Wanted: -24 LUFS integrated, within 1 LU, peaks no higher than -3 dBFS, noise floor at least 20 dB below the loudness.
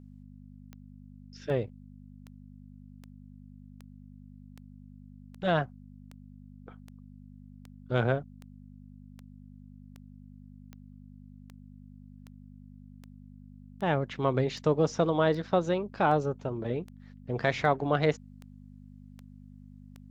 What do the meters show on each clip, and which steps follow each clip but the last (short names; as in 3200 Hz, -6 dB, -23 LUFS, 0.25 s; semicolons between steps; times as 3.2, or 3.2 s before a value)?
clicks 26; hum 50 Hz; harmonics up to 250 Hz; hum level -48 dBFS; loudness -29.5 LUFS; peak -10.5 dBFS; loudness target -24.0 LUFS
-> de-click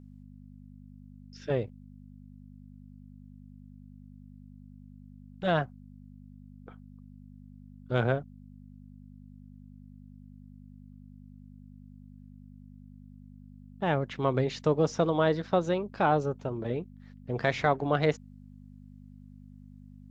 clicks 0; hum 50 Hz; harmonics up to 250 Hz; hum level -48 dBFS
-> de-hum 50 Hz, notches 5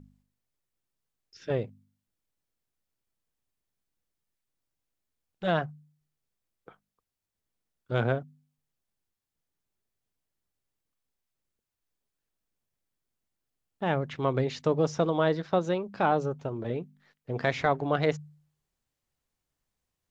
hum none; loudness -29.0 LUFS; peak -10.5 dBFS; loudness target -24.0 LUFS
-> gain +5 dB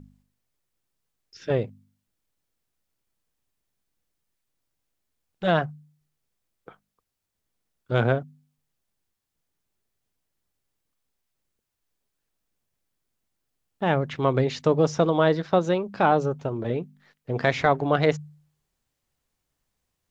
loudness -24.0 LUFS; peak -5.5 dBFS; noise floor -81 dBFS